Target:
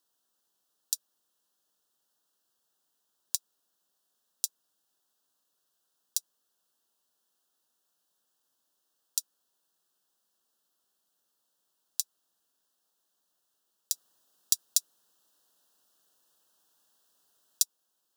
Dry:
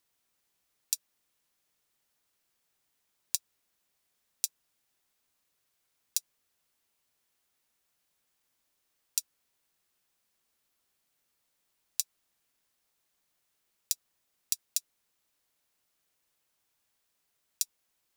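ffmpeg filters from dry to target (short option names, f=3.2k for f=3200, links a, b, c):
-filter_complex "[0:a]highpass=190,asplit=3[a][b][c];[a]afade=t=out:st=13.93:d=0.02[d];[b]acontrast=89,afade=t=in:st=13.93:d=0.02,afade=t=out:st=17.62:d=0.02[e];[c]afade=t=in:st=17.62:d=0.02[f];[d][e][f]amix=inputs=3:normalize=0,asuperstop=centerf=2200:order=4:qfactor=1.8"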